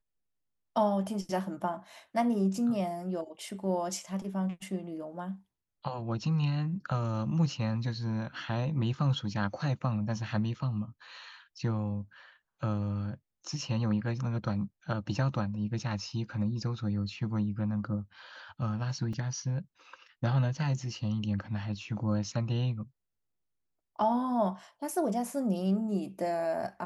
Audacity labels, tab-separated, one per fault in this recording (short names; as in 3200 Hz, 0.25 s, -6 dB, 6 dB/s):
19.130000	19.130000	gap 3.7 ms